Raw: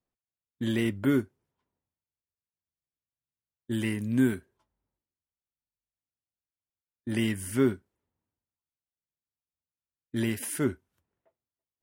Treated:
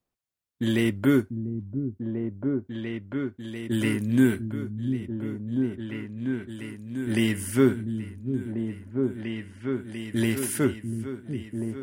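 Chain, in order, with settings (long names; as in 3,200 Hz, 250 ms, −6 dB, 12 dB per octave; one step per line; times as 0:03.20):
echo whose low-pass opens from repeat to repeat 694 ms, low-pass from 200 Hz, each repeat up 2 octaves, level −3 dB
level +4 dB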